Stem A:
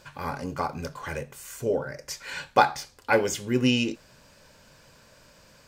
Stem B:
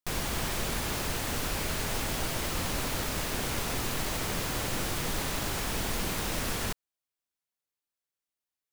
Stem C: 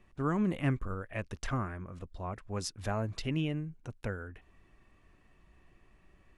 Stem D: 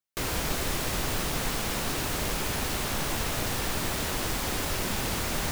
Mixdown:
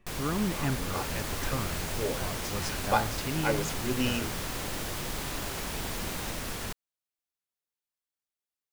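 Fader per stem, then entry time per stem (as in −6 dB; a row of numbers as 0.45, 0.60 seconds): −7.5, −4.0, −0.5, −11.0 decibels; 0.35, 0.00, 0.00, 0.80 seconds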